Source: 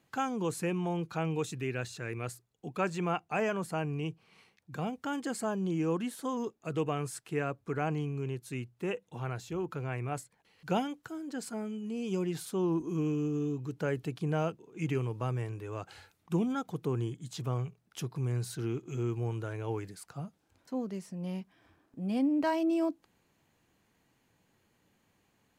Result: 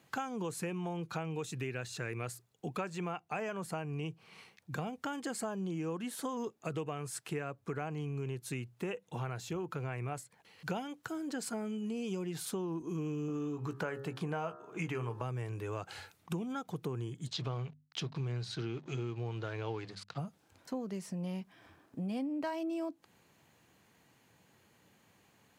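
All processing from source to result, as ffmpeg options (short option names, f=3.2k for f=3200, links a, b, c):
-filter_complex "[0:a]asettb=1/sr,asplit=3[a][b][c];[a]atrim=end=13.284[d];[b]atrim=start=13.28:end=15.22,asetpts=PTS-STARTPTS,afade=t=in:d=0.004:c=qsin,afade=t=out:st=1.936:d=0.004:c=qsin,equalizer=f=1.1k:t=o:w=1.8:g=9.5,asplit=2[e][f];[f]adelay=17,volume=-12dB[g];[e][g]amix=inputs=2:normalize=0,atrim=end_sample=85554,bandreject=f=68.69:t=h:w=4,bandreject=f=137.38:t=h:w=4,bandreject=f=206.07:t=h:w=4,bandreject=f=274.76:t=h:w=4,bandreject=f=343.45:t=h:w=4,bandreject=f=412.14:t=h:w=4,bandreject=f=480.83:t=h:w=4,bandreject=f=549.52:t=h:w=4,bandreject=f=618.21:t=h:w=4,bandreject=f=686.9:t=h:w=4,bandreject=f=755.59:t=h:w=4,bandreject=f=824.28:t=h:w=4,bandreject=f=892.97:t=h:w=4,bandreject=f=961.66:t=h:w=4,bandreject=f=1.03035k:t=h:w=4,bandreject=f=1.09904k:t=h:w=4,bandreject=f=1.16773k:t=h:w=4,bandreject=f=1.23642k:t=h:w=4,bandreject=f=1.30511k:t=h:w=4,bandreject=f=1.3738k:t=h:w=4,bandreject=f=1.44249k:t=h:w=4,bandreject=f=1.51118k:t=h:w=4,bandreject=f=1.57987k:t=h:w=4,bandreject=f=1.64856k:t=h:w=4,bandreject=f=1.71725k:t=h:w=4,bandreject=f=1.78594k:t=h:w=4,bandreject=f=1.85463k:t=h:w=4[h];[c]atrim=start=15.216[i];[d][h]acrossfade=d=0.004:c1=hsin:c2=qsin[j];[j][i]acrossfade=d=0.004:c1=qsin:c2=hsin,asettb=1/sr,asplit=3[k][l][m];[k]atrim=end=17.274[n];[l]atrim=start=17.27:end=20.18,asetpts=PTS-STARTPTS,afade=t=in:d=0.004:c=qsin,afade=t=out:st=2.906:d=0.004:c=qsin,aeval=exprs='sgn(val(0))*max(abs(val(0))-0.00178,0)':c=same,lowpass=f=4.2k:t=q:w=2.1,bandreject=f=50:t=h:w=6,bandreject=f=100:t=h:w=6,bandreject=f=150:t=h:w=6,bandreject=f=200:t=h:w=6,bandreject=f=250:t=h:w=6[o];[m]atrim=start=20.176[p];[n][o]acrossfade=d=0.004:c1=hsin:c2=qsin[q];[q][p]acrossfade=d=0.004:c1=qsin:c2=hsin,highpass=87,equalizer=f=280:t=o:w=1.1:g=-3,acompressor=threshold=-41dB:ratio=6,volume=6dB"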